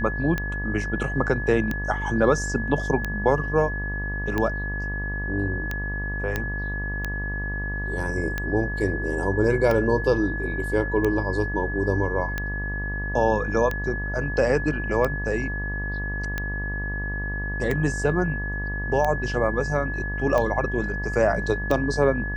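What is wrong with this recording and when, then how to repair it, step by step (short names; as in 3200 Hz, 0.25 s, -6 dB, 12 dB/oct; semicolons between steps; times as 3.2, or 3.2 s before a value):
buzz 50 Hz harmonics 24 -30 dBFS
tick 45 rpm -13 dBFS
tone 1700 Hz -30 dBFS
6.36 pop -11 dBFS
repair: de-click; de-hum 50 Hz, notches 24; notch 1700 Hz, Q 30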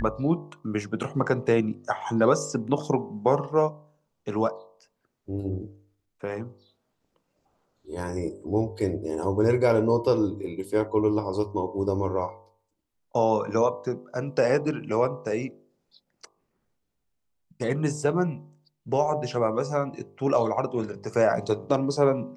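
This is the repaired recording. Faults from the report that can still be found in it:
none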